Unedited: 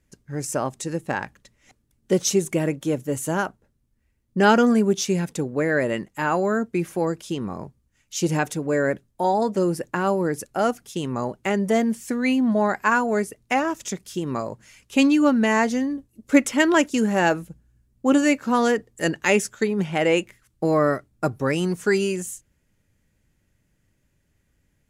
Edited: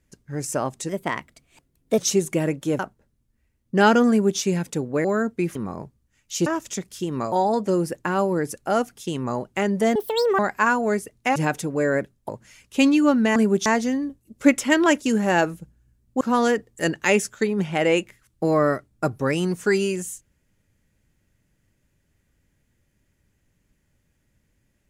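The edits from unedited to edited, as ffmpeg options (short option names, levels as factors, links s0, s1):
-filter_complex "[0:a]asplit=15[s0][s1][s2][s3][s4][s5][s6][s7][s8][s9][s10][s11][s12][s13][s14];[s0]atrim=end=0.894[s15];[s1]atrim=start=0.89:end=2.18,asetpts=PTS-STARTPTS,asetrate=52038,aresample=44100,atrim=end_sample=48211,asetpts=PTS-STARTPTS[s16];[s2]atrim=start=2.176:end=2.992[s17];[s3]atrim=start=3.418:end=5.672[s18];[s4]atrim=start=6.398:end=6.912[s19];[s5]atrim=start=7.368:end=8.282[s20];[s6]atrim=start=13.608:end=14.472[s21];[s7]atrim=start=9.208:end=11.844[s22];[s8]atrim=start=11.84:end=12.64,asetpts=PTS-STARTPTS,asetrate=81144,aresample=44100[s23];[s9]atrim=start=12.636:end=13.612[s24];[s10]atrim=start=8.278:end=9.212[s25];[s11]atrim=start=14.468:end=15.542[s26];[s12]atrim=start=4.718:end=5.022[s27];[s13]atrim=start=15.538:end=18.092[s28];[s14]atrim=start=18.408[s29];[s15][s16]acrossfade=d=0.004:c1=hsin:c2=hsin[s30];[s30][s17]acrossfade=d=0.004:c1=hsin:c2=hsin[s31];[s31][s18]acrossfade=d=0.004:c1=hsin:c2=hsin[s32];[s32][s19]acrossfade=d=0.004:c1=hsin:c2=hsin[s33];[s33][s20]acrossfade=d=0.004:c1=hsin:c2=hsin[s34];[s34][s21]acrossfade=d=0.004:c1=hsin:c2=hsin[s35];[s35][s22]acrossfade=d=0.004:c1=hsin:c2=hsin[s36];[s36][s23]acrossfade=d=0.004:c1=hsin:c2=hsin[s37];[s37][s24]acrossfade=d=0.004:c1=hsin:c2=hsin[s38];[s38][s25]acrossfade=d=0.004:c1=hsin:c2=hsin[s39];[s39][s26]acrossfade=d=0.004:c1=hsin:c2=hsin[s40];[s40][s27]acrossfade=d=0.004:c1=hsin:c2=hsin[s41];[s41][s28]acrossfade=d=0.004:c1=hsin:c2=hsin[s42];[s42][s29]acrossfade=d=0.004:c1=hsin:c2=hsin"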